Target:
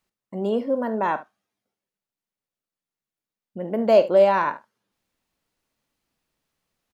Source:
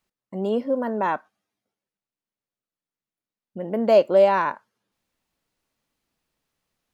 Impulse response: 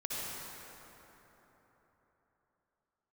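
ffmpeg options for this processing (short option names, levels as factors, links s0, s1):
-af "aecho=1:1:45|72:0.178|0.141"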